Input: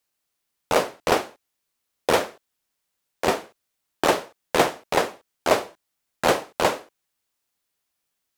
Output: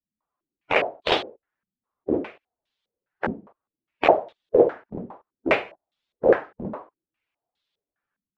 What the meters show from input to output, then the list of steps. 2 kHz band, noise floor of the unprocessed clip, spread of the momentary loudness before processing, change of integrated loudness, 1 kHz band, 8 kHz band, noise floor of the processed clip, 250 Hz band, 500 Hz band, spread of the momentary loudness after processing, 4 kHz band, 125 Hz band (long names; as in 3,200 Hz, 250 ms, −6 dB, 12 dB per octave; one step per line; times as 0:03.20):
−1.0 dB, −79 dBFS, 9 LU, +0.5 dB, −3.5 dB, below −20 dB, below −85 dBFS, +1.5 dB, +1.5 dB, 19 LU, −3.0 dB, −2.5 dB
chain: spectral magnitudes quantised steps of 15 dB
low-pass on a step sequencer 4.9 Hz 210–3,600 Hz
level −2.5 dB